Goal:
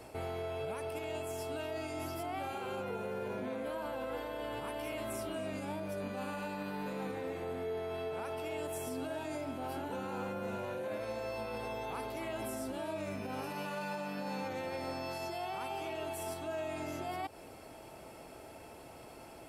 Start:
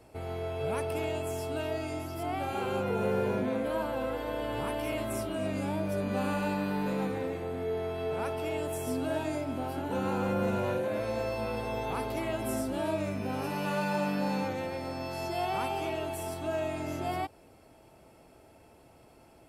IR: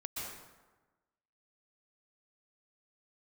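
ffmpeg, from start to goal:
-af "lowshelf=f=290:g=-6.5,areverse,acompressor=threshold=-41dB:ratio=6,areverse,alimiter=level_in=14.5dB:limit=-24dB:level=0:latency=1:release=132,volume=-14.5dB,volume=8dB"

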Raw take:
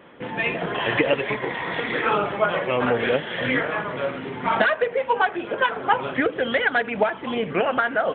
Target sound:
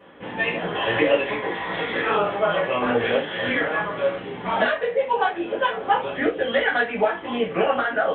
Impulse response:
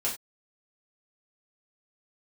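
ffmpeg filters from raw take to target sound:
-filter_complex "[0:a]asettb=1/sr,asplit=3[a][b][c];[a]atrim=end=4.164[d];[b]atrim=start=4.16:end=6.46,asetpts=PTS-STARTPTS,afade=t=in:d=0.004:c=qsin,afade=t=out:st=2.296:d=0.004:c=qsin,equalizer=f=1.3k:w=1.5:g=-4[e];[c]atrim=start=6.456[f];[d][e]acrossfade=d=0.004:c1=hsin:c2=qsin[g];[g][f]acrossfade=d=0.004:c1=qsin:c2=hsin[h];[1:a]atrim=start_sample=2205,asetrate=52920,aresample=44100[i];[h][i]afir=irnorm=-1:irlink=0,volume=-4.5dB"

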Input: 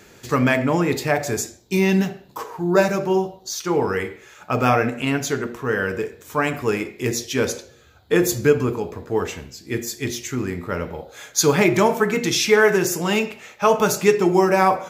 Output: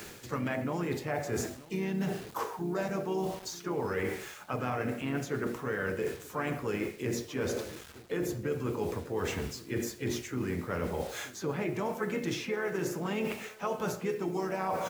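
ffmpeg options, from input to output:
-filter_complex "[0:a]acrossover=split=120|2200[a][b][c];[a]acompressor=threshold=-34dB:ratio=4[d];[b]acompressor=threshold=-21dB:ratio=4[e];[c]acompressor=threshold=-41dB:ratio=4[f];[d][e][f]amix=inputs=3:normalize=0,asplit=3[g][h][i];[h]asetrate=37084,aresample=44100,atempo=1.18921,volume=-12dB[j];[i]asetrate=52444,aresample=44100,atempo=0.840896,volume=-12dB[k];[g][j][k]amix=inputs=3:normalize=0,asplit=2[l][m];[m]adelay=932.9,volume=-23dB,highshelf=f=4k:g=-21[n];[l][n]amix=inputs=2:normalize=0,acrusher=bits=7:mix=0:aa=0.000001,areverse,acompressor=threshold=-33dB:ratio=6,areverse,volume=2.5dB"

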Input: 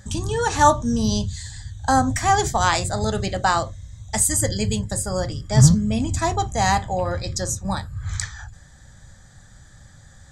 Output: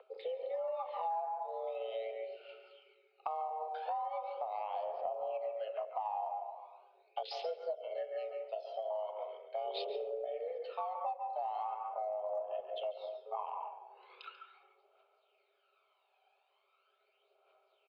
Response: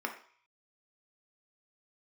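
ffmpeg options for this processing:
-filter_complex "[0:a]tiltshelf=f=1.1k:g=3.5,asetrate=25442,aresample=44100,equalizer=f=840:t=o:w=2.1:g=-12,afwtdn=0.0562,highpass=f=250:t=q:w=0.5412,highpass=f=250:t=q:w=1.307,lowpass=f=2.8k:t=q:w=0.5176,lowpass=f=2.8k:t=q:w=0.7071,lowpass=f=2.8k:t=q:w=1.932,afreqshift=320,asplit=2[a][b];[b]adelay=258,lowpass=f=990:p=1,volume=-20.5dB,asplit=2[c][d];[d]adelay=258,lowpass=f=990:p=1,volume=0.37,asplit=2[e][f];[f]adelay=258,lowpass=f=990:p=1,volume=0.37[g];[a][c][e][g]amix=inputs=4:normalize=0,alimiter=limit=-21dB:level=0:latency=1:release=264,aphaser=in_gain=1:out_gain=1:delay=1.3:decay=0.62:speed=0.4:type=triangular,asplit=2[h][i];[1:a]atrim=start_sample=2205,adelay=139[j];[i][j]afir=irnorm=-1:irlink=0,volume=-10.5dB[k];[h][k]amix=inputs=2:normalize=0,acompressor=threshold=-41dB:ratio=6,volume=4.5dB"

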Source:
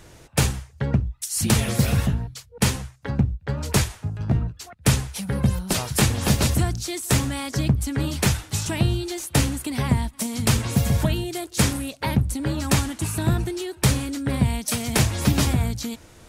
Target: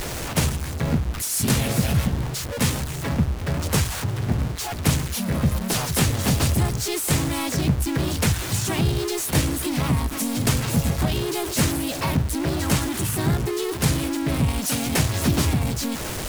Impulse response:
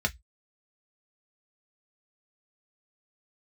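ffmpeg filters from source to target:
-filter_complex "[0:a]aeval=exprs='val(0)+0.5*0.0944*sgn(val(0))':c=same,asplit=2[a][b];[b]asetrate=52444,aresample=44100,atempo=0.840896,volume=-2dB[c];[a][c]amix=inputs=2:normalize=0,volume=-5.5dB"

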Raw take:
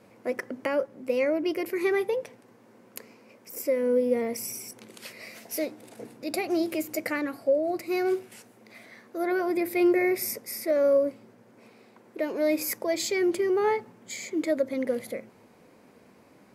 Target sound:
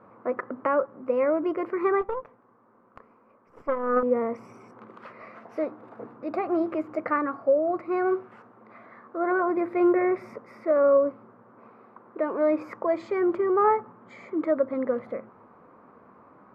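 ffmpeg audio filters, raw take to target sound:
-filter_complex "[0:a]asettb=1/sr,asplit=3[a][b][c];[a]atrim=end=2.014[d];[b]atrim=start=2.01:end=4.03,asetpts=PTS-STARTPTS,afade=t=in:d=0.004:c=qsin,afade=t=out:st=2.016:d=0.004:c=qsin,aeval=exprs='0.188*(cos(1*acos(clip(val(0)/0.188,-1,1)))-cos(1*PI/2))+0.0422*(cos(3*acos(clip(val(0)/0.188,-1,1)))-cos(3*PI/2))+0.00299*(cos(5*acos(clip(val(0)/0.188,-1,1)))-cos(5*PI/2))+0.0119*(cos(6*acos(clip(val(0)/0.188,-1,1)))-cos(6*PI/2))':c=same[e];[c]atrim=start=4.026[f];[d][e]acrossfade=d=0.004:c1=hsin:c2=qsin[g];[g][f]acrossfade=d=0.004:c1=qsin:c2=hsin,lowpass=f=1.2k:t=q:w=4.9"

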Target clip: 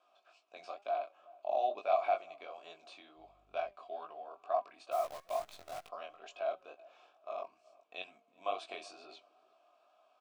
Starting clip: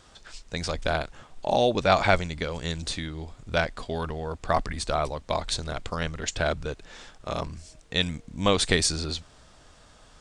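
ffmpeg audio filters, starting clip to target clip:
-filter_complex "[0:a]highpass=310,aecho=1:1:3.1:0.4,asplit=2[a][b];[b]alimiter=limit=-13.5dB:level=0:latency=1:release=249,volume=-3dB[c];[a][c]amix=inputs=2:normalize=0,asplit=3[d][e][f];[d]bandpass=f=730:t=q:w=8,volume=0dB[g];[e]bandpass=f=1.09k:t=q:w=8,volume=-6dB[h];[f]bandpass=f=2.44k:t=q:w=8,volume=-9dB[i];[g][h][i]amix=inputs=3:normalize=0,asettb=1/sr,asplit=3[j][k][l];[j]atrim=end=3.174[m];[k]atrim=start=3.17:end=3.71,asetpts=PTS-STARTPTS,afade=t=in:d=0.004:c=qsin,afade=t=out:st=0.536:d=0.004:c=qsin,aeval=exprs='val(0)+0.000562*(sin(2*PI*50*n/s)+sin(2*PI*2*50*n/s)/2+sin(2*PI*3*50*n/s)/3+sin(2*PI*4*50*n/s)/4+sin(2*PI*5*50*n/s)/5)':c=same[n];[l]atrim=start=3.706[o];[m][n]acrossfade=d=0.004:c1=hsin:c2=qsin[p];[p][o]acrossfade=d=0.004:c1=qsin:c2=hsin,flanger=delay=4.7:depth=1.4:regen=89:speed=1.1:shape=triangular,asplit=3[q][r][s];[q]afade=t=out:st=4.91:d=0.02[t];[r]acrusher=bits=8:dc=4:mix=0:aa=0.000001,afade=t=in:st=4.91:d=0.02,afade=t=out:st=5.87:d=0.02[u];[s]afade=t=in:st=5.87:d=0.02[v];[t][u][v]amix=inputs=3:normalize=0,flanger=delay=18.5:depth=4.1:speed=2.2,asplit=2[w][x];[x]adelay=373,lowpass=f=860:p=1,volume=-21dB,asplit=2[y][z];[z]adelay=373,lowpass=f=860:p=1,volume=0.31[aa];[y][aa]amix=inputs=2:normalize=0[ab];[w][ab]amix=inputs=2:normalize=0"

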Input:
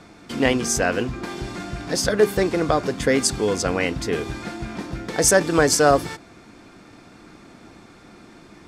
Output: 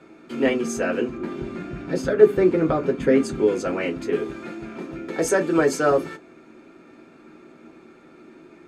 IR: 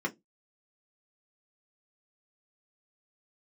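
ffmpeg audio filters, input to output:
-filter_complex "[0:a]asettb=1/sr,asplit=3[a][b][c];[a]atrim=end=1.174[d];[b]atrim=start=1.17:end=3.47,asetpts=PTS-STARTPTS,afade=t=in:d=0.004:c=qsin,afade=t=out:st=2.296:d=0.004:c=qsin,bass=f=250:g=8,treble=f=4k:g=-5[e];[c]atrim=start=3.466[f];[d][e]acrossfade=d=0.004:c1=hsin:c2=qsin[g];[g][f]acrossfade=d=0.004:c1=qsin:c2=hsin[h];[1:a]atrim=start_sample=2205,asetrate=52920,aresample=44100[i];[h][i]afir=irnorm=-1:irlink=0,volume=-8.5dB"

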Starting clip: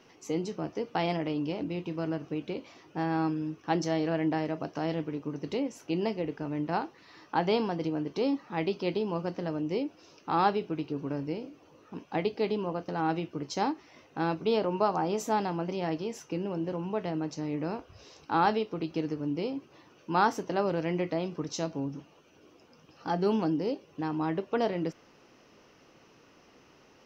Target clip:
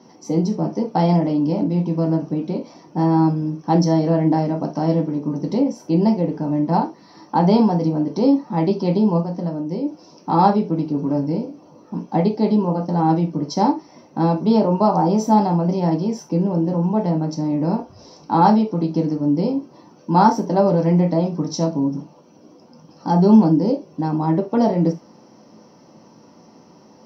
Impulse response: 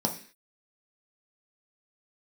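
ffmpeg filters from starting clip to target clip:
-filter_complex "[0:a]asplit=3[a][b][c];[a]afade=t=out:st=9.2:d=0.02[d];[b]acompressor=threshold=-34dB:ratio=6,afade=t=in:st=9.2:d=0.02,afade=t=out:st=9.83:d=0.02[e];[c]afade=t=in:st=9.83:d=0.02[f];[d][e][f]amix=inputs=3:normalize=0[g];[1:a]atrim=start_sample=2205,atrim=end_sample=3528[h];[g][h]afir=irnorm=-1:irlink=0,volume=-1.5dB"

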